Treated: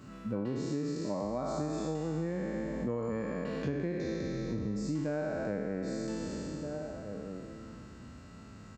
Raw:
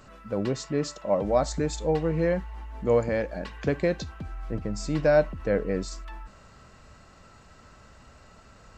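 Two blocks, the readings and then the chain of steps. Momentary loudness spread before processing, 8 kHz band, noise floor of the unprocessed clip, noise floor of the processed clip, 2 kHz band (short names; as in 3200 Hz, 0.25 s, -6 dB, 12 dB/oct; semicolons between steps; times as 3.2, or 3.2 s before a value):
14 LU, -9.0 dB, -53 dBFS, -50 dBFS, -9.5 dB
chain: spectral trails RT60 2.62 s; dynamic EQ 980 Hz, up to +7 dB, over -35 dBFS, Q 0.74; outdoor echo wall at 270 m, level -20 dB; harmonic-percussive split percussive -5 dB; HPF 88 Hz 12 dB/oct; resonant low shelf 410 Hz +9 dB, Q 1.5; compressor 6:1, threshold -28 dBFS, peak gain reduction 17.5 dB; gain -4 dB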